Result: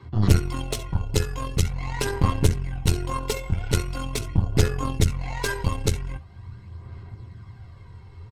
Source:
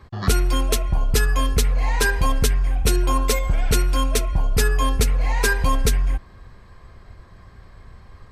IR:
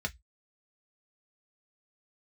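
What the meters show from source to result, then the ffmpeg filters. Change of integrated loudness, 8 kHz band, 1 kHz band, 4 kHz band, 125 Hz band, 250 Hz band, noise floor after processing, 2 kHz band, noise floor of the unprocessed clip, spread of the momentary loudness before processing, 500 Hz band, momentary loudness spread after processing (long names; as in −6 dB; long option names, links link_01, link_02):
−4.0 dB, −6.5 dB, −6.5 dB, −5.5 dB, +0.5 dB, −0.5 dB, −45 dBFS, −8.5 dB, −47 dBFS, 2 LU, −3.5 dB, 20 LU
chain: -filter_complex "[0:a]asplit=2[link_01][link_02];[link_02]acompressor=threshold=-30dB:ratio=6,volume=-2dB[link_03];[link_01][link_03]amix=inputs=2:normalize=0,aecho=1:1:60|70:0.133|0.133[link_04];[1:a]atrim=start_sample=2205,asetrate=66150,aresample=44100[link_05];[link_04][link_05]afir=irnorm=-1:irlink=0,aphaser=in_gain=1:out_gain=1:delay=2.3:decay=0.38:speed=0.43:type=sinusoidal,aeval=exprs='1.41*(cos(1*acos(clip(val(0)/1.41,-1,1)))-cos(1*PI/2))+0.316*(cos(6*acos(clip(val(0)/1.41,-1,1)))-cos(6*PI/2))+0.0631*(cos(8*acos(clip(val(0)/1.41,-1,1)))-cos(8*PI/2))':channel_layout=same,volume=-8.5dB"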